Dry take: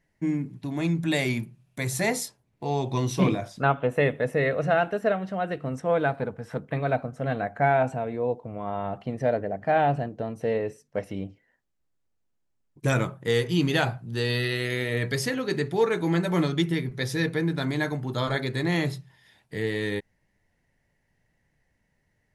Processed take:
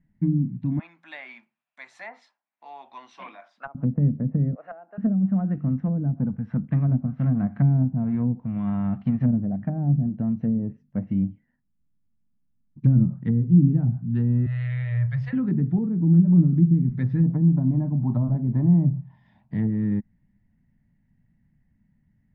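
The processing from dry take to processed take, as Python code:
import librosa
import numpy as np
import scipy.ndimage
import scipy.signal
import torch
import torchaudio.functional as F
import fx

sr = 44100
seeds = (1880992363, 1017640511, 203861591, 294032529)

y = fx.highpass(x, sr, hz=690.0, slope=24, at=(0.79, 3.75))
y = fx.highpass(y, sr, hz=600.0, slope=24, at=(4.55, 4.98))
y = fx.envelope_flatten(y, sr, power=0.6, at=(6.72, 9.44), fade=0.02)
y = fx.ellip_bandstop(y, sr, low_hz=130.0, high_hz=580.0, order=3, stop_db=50, at=(14.46, 15.33))
y = fx.band_shelf(y, sr, hz=790.0, db=11.0, octaves=1.1, at=(17.23, 19.67))
y = scipy.signal.sosfilt(scipy.signal.butter(2, 2200.0, 'lowpass', fs=sr, output='sos'), y)
y = fx.env_lowpass_down(y, sr, base_hz=370.0, full_db=-21.5)
y = fx.low_shelf_res(y, sr, hz=310.0, db=12.0, q=3.0)
y = y * 10.0 ** (-6.0 / 20.0)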